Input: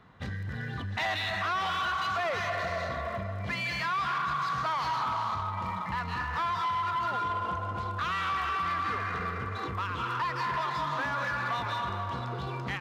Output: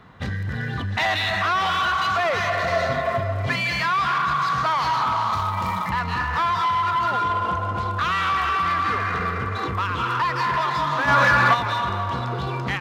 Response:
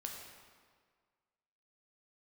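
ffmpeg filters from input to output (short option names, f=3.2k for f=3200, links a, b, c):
-filter_complex "[0:a]asettb=1/sr,asplit=3[a][b][c];[a]atrim=end=2.674[d];[b]atrim=start=2.67:end=3.56,asetpts=PTS-STARTPTS,afade=t=in:d=0.004:c=qsin,afade=t=out:st=0.886:d=0.004:c=qsin,aecho=1:1:7.5:0.81,atrim=end_sample=39249[e];[c]atrim=start=3.556[f];[d][e]acrossfade=d=0.004:c1=hsin:c2=qsin[g];[g][f]acrossfade=d=0.004:c1=qsin:c2=hsin,asplit=3[h][i][j];[h]afade=t=out:st=5.32:d=0.02[k];[i]aemphasis=mode=production:type=50kf,afade=t=in:st=5.32:d=0.02,afade=t=out:st=5.89:d=0.02[l];[j]afade=t=in:st=5.89:d=0.02[m];[k][l][m]amix=inputs=3:normalize=0,asplit=3[n][o][p];[n]afade=t=out:st=11.07:d=0.02[q];[o]acontrast=74,afade=t=in:st=11.07:d=0.02,afade=t=out:st=11.53:d=0.02[r];[p]afade=t=in:st=11.53:d=0.02[s];[q][r][s]amix=inputs=3:normalize=0,volume=8.5dB"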